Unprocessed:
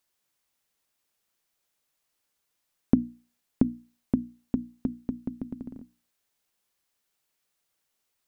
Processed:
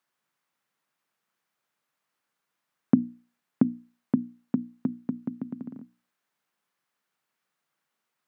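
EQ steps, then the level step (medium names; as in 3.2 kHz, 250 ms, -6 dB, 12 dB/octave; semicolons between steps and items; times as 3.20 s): high-pass 120 Hz 24 dB/octave; peaking EQ 170 Hz +10.5 dB 2 oct; peaking EQ 1.3 kHz +13 dB 2.3 oct; -8.5 dB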